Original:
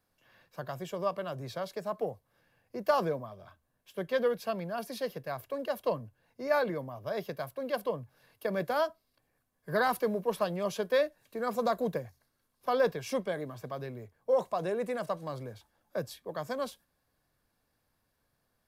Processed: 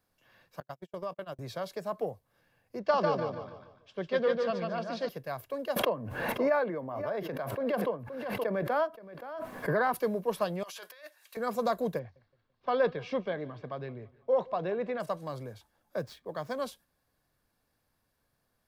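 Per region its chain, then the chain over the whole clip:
0.6–1.39 gate -37 dBFS, range -42 dB + compressor 3:1, threshold -33 dBFS
2.79–5.09 LPF 5400 Hz 24 dB/oct + feedback echo 0.147 s, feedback 38%, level -3.5 dB
5.76–9.94 three-band isolator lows -16 dB, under 160 Hz, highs -15 dB, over 2600 Hz + echo 0.524 s -19 dB + backwards sustainer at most 32 dB/s
10.63–11.37 HPF 1200 Hz + negative-ratio compressor -48 dBFS
11.99–15 LPF 4000 Hz 24 dB/oct + feedback echo 0.168 s, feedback 41%, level -22 dB
15.98–16.55 median filter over 5 samples + notch 2700 Hz, Q 23
whole clip: dry

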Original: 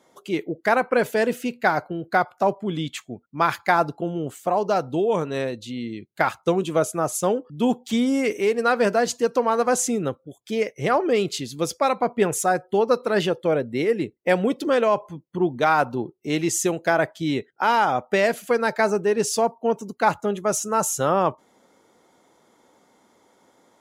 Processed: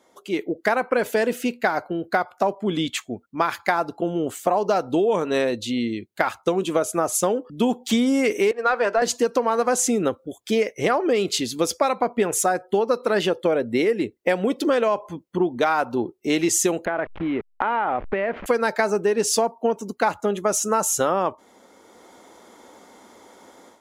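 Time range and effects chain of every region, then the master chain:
8.51–9.02 weighting filter A + overdrive pedal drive 9 dB, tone 1000 Hz, clips at -8.5 dBFS + three-band expander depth 70%
16.85–18.46 level-crossing sampler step -34 dBFS + LPF 2400 Hz 24 dB/oct + compressor 5:1, threshold -29 dBFS
whole clip: AGC gain up to 11 dB; bell 140 Hz -13 dB 0.44 oct; compressor, threshold -17 dBFS

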